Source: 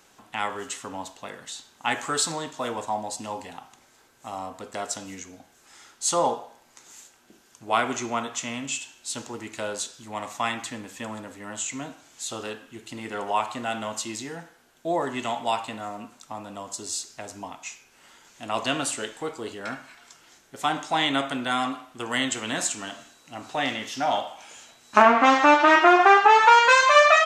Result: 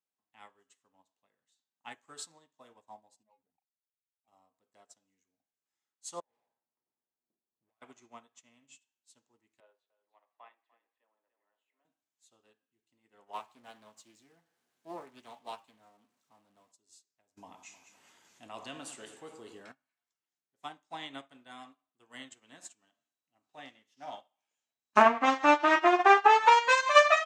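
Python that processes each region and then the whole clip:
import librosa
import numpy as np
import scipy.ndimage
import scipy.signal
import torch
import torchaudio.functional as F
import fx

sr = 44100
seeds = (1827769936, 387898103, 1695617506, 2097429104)

y = fx.chain(x, sr, fx.spec_expand(power=2.8),
    fx.band_shelf(hz=1900.0, db=-9.0, octaves=1.7),
    fx.backlash(play_db=-36.0), at=(3.23, 4.28))
y = fx.chain(y, sr, fx.env_lowpass(base_hz=620.0, full_db=-24.5),
    fx.over_compress(threshold_db=-31.0, ratio=-0.5),
    fx.tube_stage(drive_db=40.0, bias=0.6), at=(6.2, 7.82))
y = fx.chain(y, sr, fx.highpass(hz=410.0, slope=24),
    fx.air_absorb(metres=400.0),
    fx.echo_single(ms=297, db=-8.0), at=(9.6, 11.85))
y = fx.chain(y, sr, fx.zero_step(step_db=-34.0),
    fx.highpass(hz=67.0, slope=24),
    fx.doppler_dist(depth_ms=0.31), at=(13.33, 16.72))
y = fx.chain(y, sr, fx.echo_alternate(ms=103, hz=1300.0, feedback_pct=63, wet_db=-9.5),
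    fx.env_flatten(amount_pct=70), at=(17.37, 19.72))
y = scipy.signal.sosfilt(scipy.signal.butter(2, 96.0, 'highpass', fs=sr, output='sos'), y)
y = fx.notch(y, sr, hz=1400.0, q=16.0)
y = fx.upward_expand(y, sr, threshold_db=-38.0, expansion=2.5)
y = y * librosa.db_to_amplitude(-2.0)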